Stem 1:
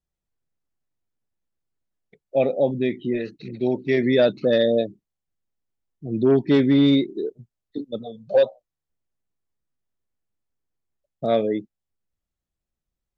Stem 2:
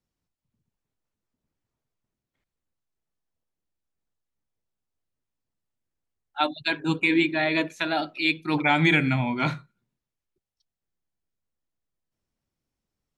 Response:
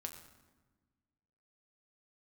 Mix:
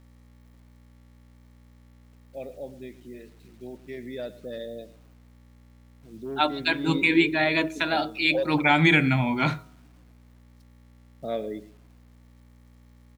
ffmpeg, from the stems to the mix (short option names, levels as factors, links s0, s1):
-filter_complex "[0:a]highpass=f=110:p=1,volume=0.299,afade=t=in:st=6.76:d=0.29:silence=0.398107,asplit=3[s0][s1][s2];[s1]volume=0.168[s3];[s2]volume=0.168[s4];[1:a]bandreject=f=105.9:t=h:w=4,bandreject=f=211.8:t=h:w=4,bandreject=f=317.7:t=h:w=4,bandreject=f=423.6:t=h:w=4,bandreject=f=529.5:t=h:w=4,bandreject=f=635.4:t=h:w=4,bandreject=f=741.3:t=h:w=4,bandreject=f=847.2:t=h:w=4,bandreject=f=953.1:t=h:w=4,bandreject=f=1059:t=h:w=4,bandreject=f=1164.9:t=h:w=4,bandreject=f=1270.8:t=h:w=4,bandreject=f=1376.7:t=h:w=4,aeval=exprs='val(0)+0.002*(sin(2*PI*60*n/s)+sin(2*PI*2*60*n/s)/2+sin(2*PI*3*60*n/s)/3+sin(2*PI*4*60*n/s)/4+sin(2*PI*5*60*n/s)/5)':c=same,volume=1.12,asplit=2[s5][s6];[s6]volume=0.0891[s7];[2:a]atrim=start_sample=2205[s8];[s3][s7]amix=inputs=2:normalize=0[s9];[s9][s8]afir=irnorm=-1:irlink=0[s10];[s4]aecho=0:1:111|222|333|444:1|0.24|0.0576|0.0138[s11];[s0][s5][s10][s11]amix=inputs=4:normalize=0,acrusher=bits=9:mix=0:aa=0.000001"